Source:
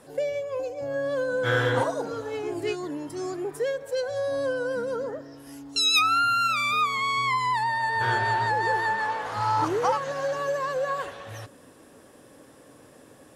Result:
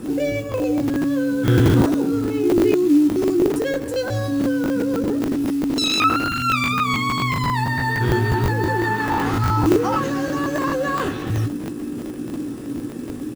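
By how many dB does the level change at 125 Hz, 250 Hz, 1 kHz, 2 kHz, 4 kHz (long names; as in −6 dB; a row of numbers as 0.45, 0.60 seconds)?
+15.0, +19.0, +1.5, +2.5, +1.5 decibels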